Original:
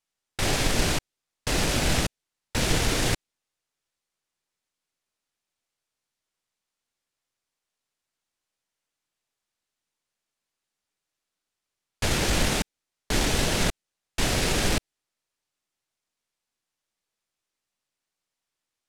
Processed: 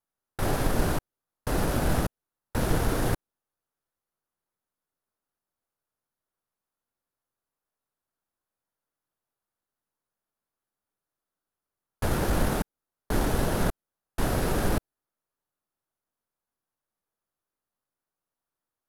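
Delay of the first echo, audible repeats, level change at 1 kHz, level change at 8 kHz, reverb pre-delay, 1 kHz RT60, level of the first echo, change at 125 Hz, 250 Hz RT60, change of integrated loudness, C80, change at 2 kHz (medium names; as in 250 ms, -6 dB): no echo, no echo, 0.0 dB, -9.5 dB, no reverb, no reverb, no echo, 0.0 dB, no reverb, -3.5 dB, no reverb, -6.5 dB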